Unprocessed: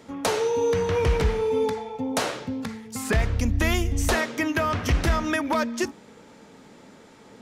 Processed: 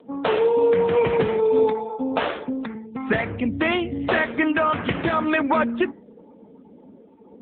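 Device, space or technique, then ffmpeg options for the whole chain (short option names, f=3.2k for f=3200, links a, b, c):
mobile call with aggressive noise cancelling: -filter_complex "[0:a]asettb=1/sr,asplit=3[a][b][c];[a]atrim=end=1.914[d];[b]atrim=start=1.91:end=2.75,asetpts=PTS-STARTPTS,afade=t=in:d=0.004:c=qsin,afade=t=out:st=0.836:d=0.004:c=qsin,highpass=210[e];[c]atrim=start=2.746[f];[d][e]acrossfade=d=0.004:c1=hsin:c2=qsin[g];[g][f]acrossfade=d=0.004:c1=qsin:c2=hsin,highpass=160,afftdn=nr=22:nf=-44,volume=5.5dB" -ar 8000 -c:a libopencore_amrnb -b:a 7950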